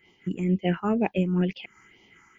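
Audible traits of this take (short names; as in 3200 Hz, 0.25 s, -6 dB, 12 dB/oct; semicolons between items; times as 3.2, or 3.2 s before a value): phasing stages 4, 2.1 Hz, lowest notch 560–1500 Hz; noise-modulated level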